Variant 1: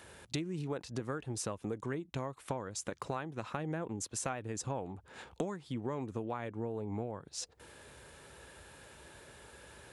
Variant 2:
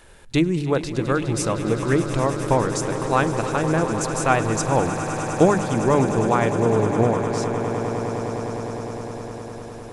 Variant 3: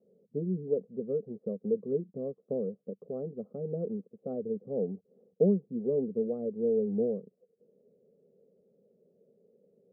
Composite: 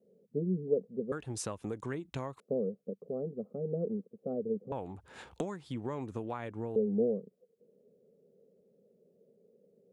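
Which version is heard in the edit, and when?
3
0:01.12–0:02.40: punch in from 1
0:04.72–0:06.76: punch in from 1
not used: 2

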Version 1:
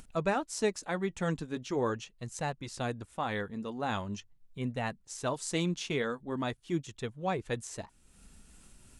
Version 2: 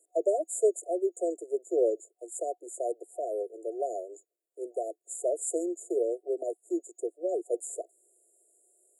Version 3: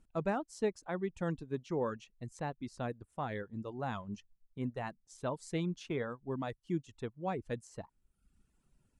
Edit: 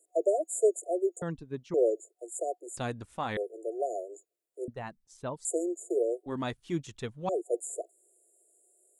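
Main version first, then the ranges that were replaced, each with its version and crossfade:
2
0:01.22–0:01.74: punch in from 3
0:02.77–0:03.37: punch in from 1
0:04.68–0:05.45: punch in from 3
0:06.26–0:07.29: punch in from 1

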